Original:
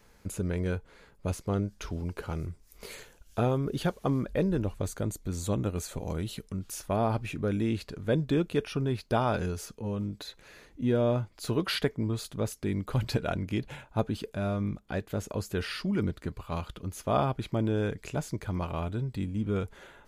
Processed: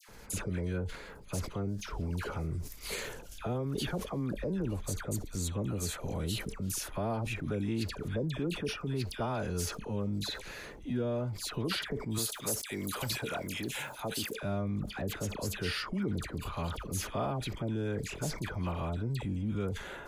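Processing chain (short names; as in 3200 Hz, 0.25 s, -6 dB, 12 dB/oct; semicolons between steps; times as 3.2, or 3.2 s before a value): 12.1–14.34 RIAA curve recording; compressor 6:1, threshold -39 dBFS, peak gain reduction 16.5 dB; transient shaper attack -5 dB, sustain +4 dB; dispersion lows, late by 86 ms, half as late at 1400 Hz; sustainer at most 94 dB/s; gain +8 dB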